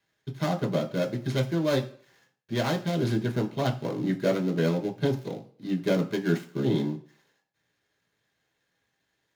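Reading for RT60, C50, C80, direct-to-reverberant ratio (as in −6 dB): non-exponential decay, 14.0 dB, 18.0 dB, 1.0 dB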